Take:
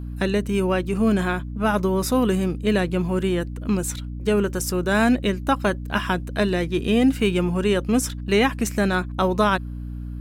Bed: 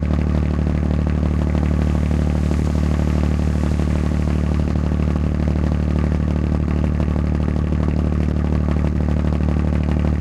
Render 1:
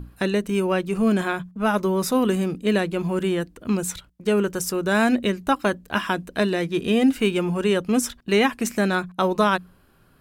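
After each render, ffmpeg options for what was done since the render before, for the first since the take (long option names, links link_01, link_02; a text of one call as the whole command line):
ffmpeg -i in.wav -af "bandreject=frequency=60:width_type=h:width=6,bandreject=frequency=120:width_type=h:width=6,bandreject=frequency=180:width_type=h:width=6,bandreject=frequency=240:width_type=h:width=6,bandreject=frequency=300:width_type=h:width=6" out.wav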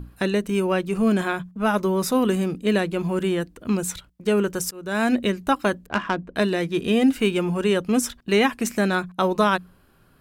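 ffmpeg -i in.wav -filter_complex "[0:a]asettb=1/sr,asplit=3[link_01][link_02][link_03];[link_01]atrim=end=5.864[link_04];[link_02]atrim=start=5.86:end=6.36,asetpts=PTS-STARTPTS,afade=type=in:duration=0.004:curve=qsin,afade=type=out:start_time=0.496:duration=0.004:curve=qsin,adynamicsmooth=sensitivity=1:basefreq=1600[link_05];[link_03]atrim=start=6.356[link_06];[link_04][link_05]acrossfade=duration=0.004:curve1=hsin:curve2=qsin[link_07];[link_07][link_06]acrossfade=duration=0.004:curve1=qsin:curve2=hsin,asplit=2[link_08][link_09];[link_08]atrim=end=4.71,asetpts=PTS-STARTPTS,afade=type=out:start_time=4.706:duration=0.004:curve=hsin:silence=0.0668344[link_10];[link_09]atrim=start=4.71,asetpts=PTS-STARTPTS,afade=type=in:duration=0.44:silence=0.0668344[link_11];[link_10][link_11]concat=n=2:v=0:a=1" out.wav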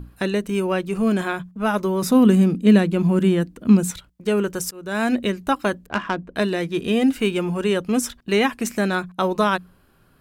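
ffmpeg -i in.wav -filter_complex "[0:a]asettb=1/sr,asplit=3[link_01][link_02][link_03];[link_01]atrim=end=2.024[link_04];[link_02]atrim=start=2.02:end=3.91,asetpts=PTS-STARTPTS,afade=type=in:duration=0.004:curve=qsin,afade=type=out:start_time=1.886:duration=0.004:curve=qsin,equalizer=frequency=210:width=1.4:gain=10[link_05];[link_03]atrim=start=3.906[link_06];[link_04][link_05]acrossfade=duration=0.004:curve1=hsin:curve2=qsin[link_07];[link_07][link_06]acrossfade=duration=0.004:curve1=qsin:curve2=hsin" out.wav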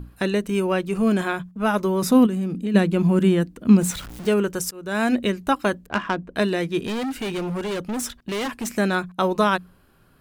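ffmpeg -i in.wav -filter_complex "[0:a]asplit=3[link_01][link_02][link_03];[link_01]afade=type=out:start_time=2.25:duration=0.02[link_04];[link_02]acompressor=threshold=-23dB:ratio=5:attack=3.2:release=140:knee=1:detection=peak,afade=type=in:start_time=2.25:duration=0.02,afade=type=out:start_time=2.74:duration=0.02[link_05];[link_03]afade=type=in:start_time=2.74:duration=0.02[link_06];[link_04][link_05][link_06]amix=inputs=3:normalize=0,asettb=1/sr,asplit=3[link_07][link_08][link_09];[link_07]atrim=end=3.814[link_10];[link_08]atrim=start=3.81:end=4.34,asetpts=PTS-STARTPTS,afade=type=in:duration=0.004:curve=qsin,afade=type=out:start_time=0.526:duration=0.004:curve=qsin,aeval=exprs='val(0)+0.5*0.0251*sgn(val(0))':channel_layout=same[link_11];[link_09]atrim=start=4.336[link_12];[link_10][link_11]acrossfade=duration=0.004:curve1=hsin:curve2=qsin[link_13];[link_13][link_12]acrossfade=duration=0.004:curve1=qsin:curve2=hsin,asettb=1/sr,asplit=3[link_14][link_15][link_16];[link_14]atrim=end=6.864[link_17];[link_15]atrim=start=6.86:end=8.68,asetpts=PTS-STARTPTS,afade=type=in:duration=0.004:curve=qsin,afade=type=out:start_time=1.816:duration=0.004:curve=qsin,asoftclip=type=hard:threshold=-24.5dB[link_18];[link_16]atrim=start=8.676[link_19];[link_17][link_18]acrossfade=duration=0.004:curve1=hsin:curve2=qsin[link_20];[link_20][link_19]acrossfade=duration=0.004:curve1=qsin:curve2=hsin" out.wav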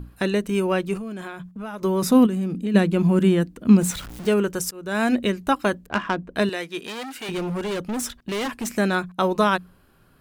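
ffmpeg -i in.wav -filter_complex "[0:a]asettb=1/sr,asplit=3[link_01][link_02][link_03];[link_01]atrim=end=0.974[link_04];[link_02]atrim=start=0.97:end=1.82,asetpts=PTS-STARTPTS,afade=type=in:duration=0.004:curve=qsin,afade=type=out:start_time=0.846:duration=0.004:curve=qsin,acompressor=threshold=-31dB:ratio=5:attack=3.2:release=140:knee=1:detection=peak[link_05];[link_03]atrim=start=1.816[link_06];[link_04][link_05]acrossfade=duration=0.004:curve1=hsin:curve2=qsin[link_07];[link_07][link_06]acrossfade=duration=0.004:curve1=qsin:curve2=hsin,asettb=1/sr,asplit=3[link_08][link_09][link_10];[link_08]atrim=end=6.494[link_11];[link_09]atrim=start=6.49:end=7.29,asetpts=PTS-STARTPTS,afade=type=in:duration=0.004:curve=qsin,afade=type=out:start_time=0.796:duration=0.004:curve=qsin,highpass=frequency=830:poles=1[link_12];[link_10]atrim=start=7.286[link_13];[link_11][link_12]acrossfade=duration=0.004:curve1=hsin:curve2=qsin[link_14];[link_14][link_13]acrossfade=duration=0.004:curve1=qsin:curve2=hsin" out.wav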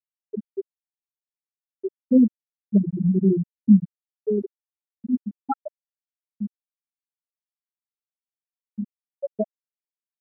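ffmpeg -i in.wav -af "afftfilt=real='re*gte(hypot(re,im),1)':imag='im*gte(hypot(re,im),1)':win_size=1024:overlap=0.75,equalizer=frequency=2300:width_type=o:width=1.6:gain=8" out.wav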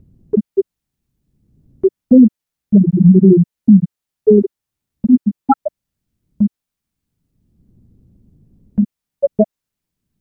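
ffmpeg -i in.wav -filter_complex "[0:a]acrossover=split=230[link_01][link_02];[link_01]acompressor=mode=upward:threshold=-23dB:ratio=2.5[link_03];[link_03][link_02]amix=inputs=2:normalize=0,alimiter=level_in=13dB:limit=-1dB:release=50:level=0:latency=1" out.wav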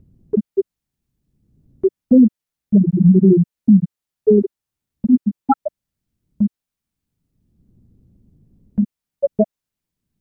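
ffmpeg -i in.wav -af "volume=-3dB" out.wav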